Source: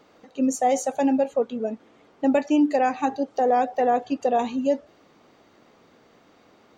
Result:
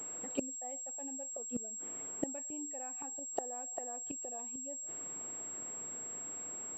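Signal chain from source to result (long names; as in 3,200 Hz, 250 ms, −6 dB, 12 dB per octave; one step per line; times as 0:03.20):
0:00.85–0:01.43: variable-slope delta modulation 64 kbit/s
gate with flip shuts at −22 dBFS, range −28 dB
switching amplifier with a slow clock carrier 7,600 Hz
level +1 dB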